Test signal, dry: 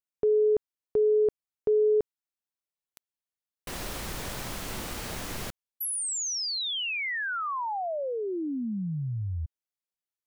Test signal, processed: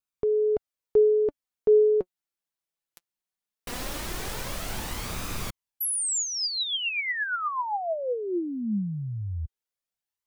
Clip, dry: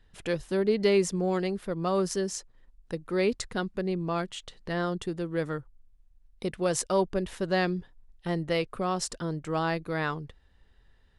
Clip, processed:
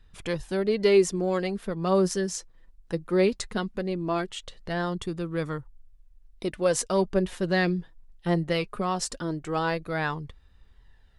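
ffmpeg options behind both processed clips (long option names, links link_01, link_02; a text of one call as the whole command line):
ffmpeg -i in.wav -af "flanger=delay=0.8:depth=5.3:regen=50:speed=0.19:shape=sinusoidal,volume=6dB" out.wav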